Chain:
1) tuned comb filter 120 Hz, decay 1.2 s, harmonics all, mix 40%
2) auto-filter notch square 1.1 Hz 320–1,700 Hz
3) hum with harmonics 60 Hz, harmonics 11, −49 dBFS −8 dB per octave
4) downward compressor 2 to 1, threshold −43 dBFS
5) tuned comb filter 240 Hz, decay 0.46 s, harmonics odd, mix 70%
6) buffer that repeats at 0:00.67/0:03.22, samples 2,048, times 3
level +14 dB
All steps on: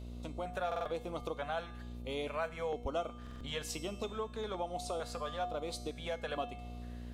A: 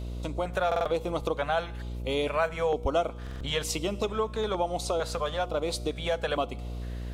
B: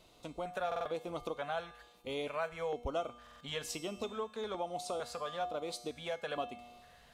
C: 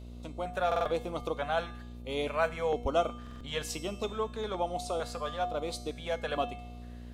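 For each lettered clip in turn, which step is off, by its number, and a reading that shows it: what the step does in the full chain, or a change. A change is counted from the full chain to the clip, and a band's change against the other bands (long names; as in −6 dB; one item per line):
5, change in integrated loudness +9.5 LU
3, 125 Hz band −6.5 dB
4, average gain reduction 4.0 dB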